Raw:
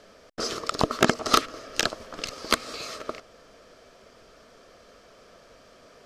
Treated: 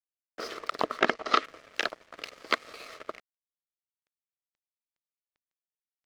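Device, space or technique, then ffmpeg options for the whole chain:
pocket radio on a weak battery: -filter_complex "[0:a]highpass=340,lowpass=3600,aeval=exprs='sgn(val(0))*max(abs(val(0))-0.00668,0)':channel_layout=same,equalizer=frequency=2000:width_type=o:width=0.44:gain=5,asplit=3[link_01][link_02][link_03];[link_01]afade=type=out:start_time=0.99:duration=0.02[link_04];[link_02]lowpass=6600,afade=type=in:start_time=0.99:duration=0.02,afade=type=out:start_time=1.43:duration=0.02[link_05];[link_03]afade=type=in:start_time=1.43:duration=0.02[link_06];[link_04][link_05][link_06]amix=inputs=3:normalize=0,volume=-3dB"

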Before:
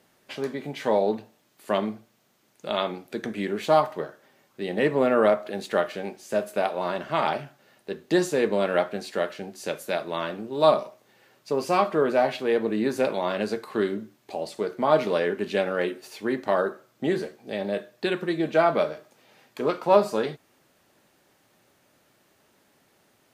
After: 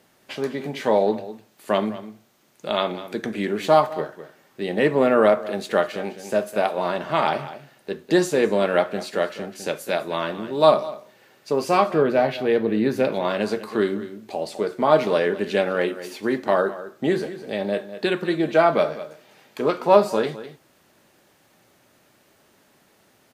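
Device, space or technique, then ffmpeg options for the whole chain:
ducked delay: -filter_complex "[0:a]asettb=1/sr,asplit=3[link_01][link_02][link_03];[link_01]atrim=end=11.944[link_04];[link_02]atrim=start=11.94:end=13.25,asetpts=PTS-STARTPTS,afade=type=in:duration=0.004:curve=qsin,afade=type=out:start_time=1.306:duration=0.004:curve=qsin,equalizer=frequency=125:width_type=o:width=1:gain=5,equalizer=frequency=1000:width_type=o:width=1:gain=-4,equalizer=frequency=8000:width_type=o:width=1:gain=-9[link_05];[link_03]atrim=start=13.246[link_06];[link_04][link_05]acrossfade=duration=0.004:curve1=hsin:curve2=qsin[link_07];[link_07][link_06]acrossfade=duration=0.004:curve1=qsin:curve2=hsin,asplit=3[link_08][link_09][link_10];[link_09]adelay=203,volume=-6dB[link_11];[link_10]apad=whole_len=1038091[link_12];[link_11][link_12]sidechaincompress=threshold=-35dB:ratio=3:attack=5.4:release=427[link_13];[link_08][link_13]amix=inputs=2:normalize=0,volume=3.5dB"

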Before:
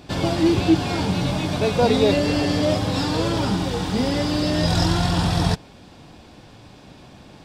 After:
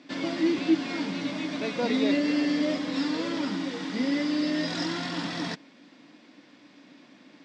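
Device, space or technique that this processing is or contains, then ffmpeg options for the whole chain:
television speaker: -af "highpass=frequency=210:width=0.5412,highpass=frequency=210:width=1.3066,equalizer=frequency=280:width_type=q:width=4:gain=9,equalizer=frequency=410:width_type=q:width=4:gain=-6,equalizer=frequency=790:width_type=q:width=4:gain=-8,equalizer=frequency=2000:width_type=q:width=4:gain=9,lowpass=frequency=6700:width=0.5412,lowpass=frequency=6700:width=1.3066,volume=-8dB"

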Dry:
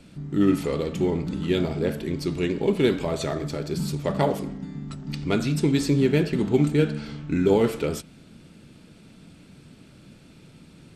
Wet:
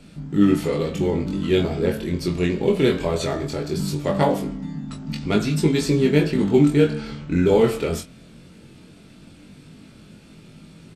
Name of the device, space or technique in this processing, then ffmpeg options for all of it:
double-tracked vocal: -filter_complex "[0:a]asplit=2[link_01][link_02];[link_02]adelay=24,volume=-9dB[link_03];[link_01][link_03]amix=inputs=2:normalize=0,flanger=delay=19:depth=3.4:speed=0.19,volume=6dB"

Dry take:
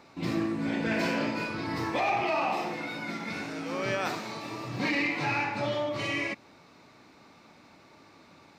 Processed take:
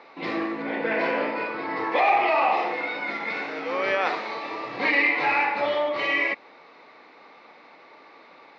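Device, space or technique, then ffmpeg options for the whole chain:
phone earpiece: -filter_complex "[0:a]asettb=1/sr,asplit=3[link_01][link_02][link_03];[link_01]atrim=end=0.624[link_04];[link_02]atrim=start=0.62:end=1.92,asetpts=PTS-STARTPTS,afade=type=in:duration=0.004:curve=qsin,afade=type=out:start_time=1.296:duration=0.004:curve=qsin,highshelf=frequency=3100:gain=-9.5[link_05];[link_03]atrim=start=1.916[link_06];[link_04][link_05]acrossfade=duration=0.004:curve1=hsin:curve2=qsin[link_07];[link_07][link_06]acrossfade=duration=0.004:curve1=qsin:curve2=hsin,highpass=370,equalizer=frequency=480:width_type=q:width=4:gain=7,equalizer=frequency=790:width_type=q:width=4:gain=4,equalizer=frequency=1100:width_type=q:width=4:gain=4,equalizer=frequency=2000:width_type=q:width=4:gain=7,lowpass=frequency=4300:width=0.5412,lowpass=frequency=4300:width=1.3066,volume=4dB"

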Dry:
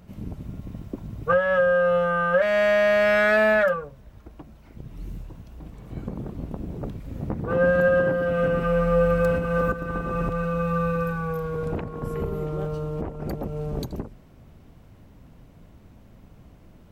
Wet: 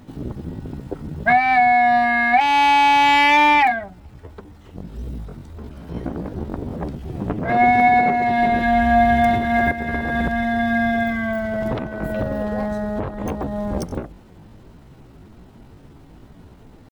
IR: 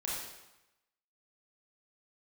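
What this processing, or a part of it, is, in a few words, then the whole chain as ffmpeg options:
chipmunk voice: -af "asetrate=60591,aresample=44100,atempo=0.727827,volume=5dB"

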